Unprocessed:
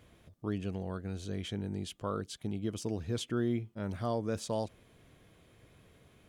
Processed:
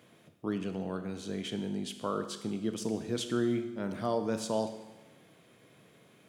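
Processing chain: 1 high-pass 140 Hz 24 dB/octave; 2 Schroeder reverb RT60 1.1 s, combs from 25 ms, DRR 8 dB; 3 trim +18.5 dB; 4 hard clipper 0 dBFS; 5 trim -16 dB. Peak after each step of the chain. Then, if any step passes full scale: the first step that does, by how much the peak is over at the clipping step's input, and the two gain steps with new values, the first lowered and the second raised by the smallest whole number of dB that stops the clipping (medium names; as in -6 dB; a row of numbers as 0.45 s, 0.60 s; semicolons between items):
-21.5 dBFS, -21.0 dBFS, -2.5 dBFS, -2.5 dBFS, -18.5 dBFS; nothing clips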